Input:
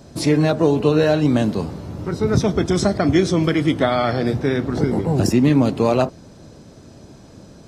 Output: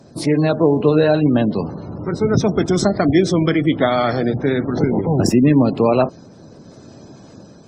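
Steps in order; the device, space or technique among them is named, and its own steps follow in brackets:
noise-suppressed video call (high-pass filter 110 Hz 12 dB per octave; gate on every frequency bin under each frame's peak −30 dB strong; automatic gain control gain up to 3.5 dB; Opus 32 kbit/s 48,000 Hz)

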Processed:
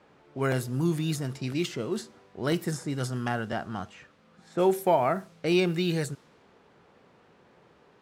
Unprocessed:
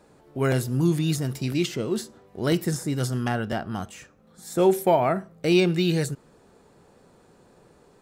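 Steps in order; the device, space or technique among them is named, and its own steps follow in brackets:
cassette deck with a dynamic noise filter (white noise bed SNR 30 dB; low-pass that shuts in the quiet parts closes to 2,500 Hz, open at −20 dBFS)
high-pass filter 64 Hz
parametric band 1,200 Hz +4 dB 1.8 octaves
level −5 dB

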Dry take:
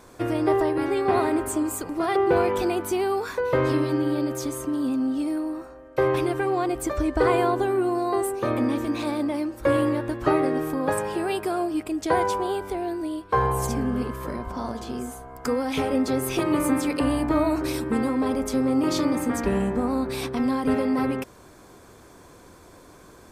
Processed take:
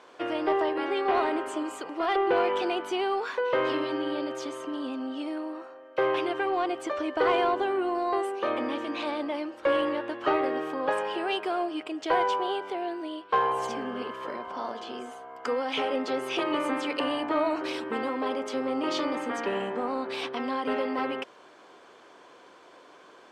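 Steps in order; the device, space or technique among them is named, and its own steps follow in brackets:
intercom (band-pass filter 450–4,000 Hz; parametric band 3,000 Hz +10 dB 0.2 octaves; soft clipping −14 dBFS, distortion −23 dB)

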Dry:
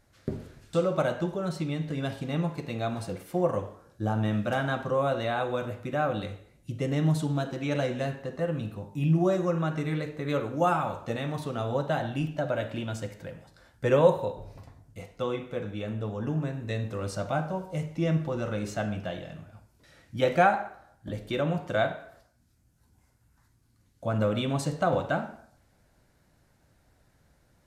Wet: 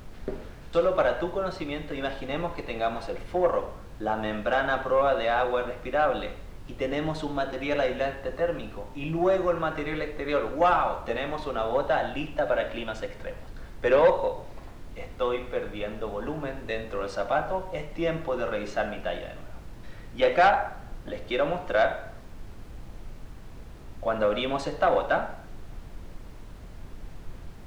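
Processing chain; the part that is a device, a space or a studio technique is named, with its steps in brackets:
aircraft cabin announcement (band-pass filter 410–3,600 Hz; soft clipping −18.5 dBFS, distortion −15 dB; brown noise bed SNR 11 dB)
level +6 dB

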